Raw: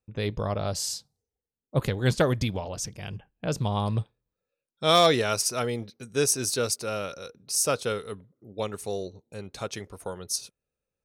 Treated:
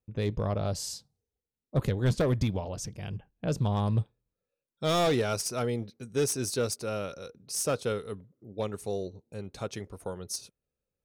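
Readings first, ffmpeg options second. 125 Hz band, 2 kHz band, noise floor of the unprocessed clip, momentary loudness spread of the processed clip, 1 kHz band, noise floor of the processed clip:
0.0 dB, -6.5 dB, under -85 dBFS, 13 LU, -6.5 dB, under -85 dBFS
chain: -af "asoftclip=type=hard:threshold=-19.5dB,tiltshelf=f=670:g=3.5,volume=-2.5dB"

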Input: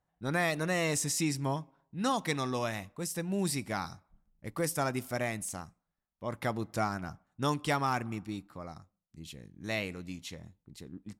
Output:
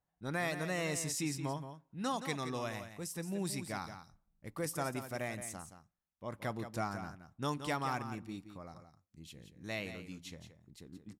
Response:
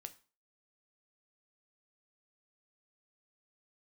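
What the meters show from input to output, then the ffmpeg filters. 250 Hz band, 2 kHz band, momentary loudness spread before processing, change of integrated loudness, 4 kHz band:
-5.5 dB, -5.5 dB, 18 LU, -5.5 dB, -5.5 dB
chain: -af "aecho=1:1:173:0.316,volume=-6dB"

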